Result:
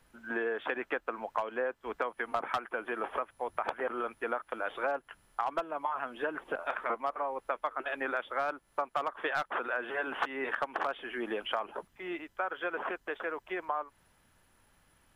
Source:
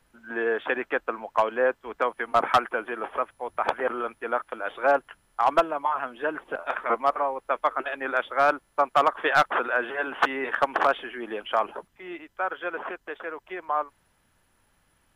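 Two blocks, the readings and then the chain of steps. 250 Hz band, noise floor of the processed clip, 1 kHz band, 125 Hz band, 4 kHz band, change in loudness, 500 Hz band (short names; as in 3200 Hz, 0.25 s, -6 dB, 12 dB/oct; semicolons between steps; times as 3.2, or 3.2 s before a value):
-5.5 dB, -69 dBFS, -9.5 dB, -10.0 dB, -7.5 dB, -9.0 dB, -8.5 dB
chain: compressor 6:1, threshold -30 dBFS, peak gain reduction 14.5 dB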